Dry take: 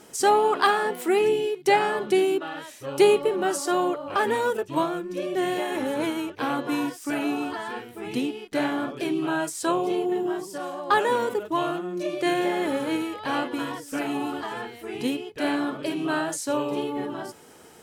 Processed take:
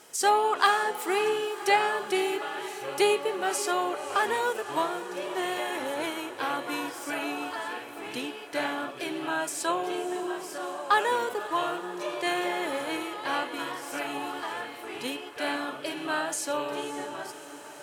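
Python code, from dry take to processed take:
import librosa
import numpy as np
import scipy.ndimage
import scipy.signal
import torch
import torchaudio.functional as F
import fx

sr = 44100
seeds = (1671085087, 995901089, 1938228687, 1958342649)

y = fx.highpass(x, sr, hz=160.0, slope=6)
y = fx.peak_eq(y, sr, hz=210.0, db=-10.5, octaves=2.2)
y = fx.echo_diffused(y, sr, ms=553, feedback_pct=68, wet_db=-13.5)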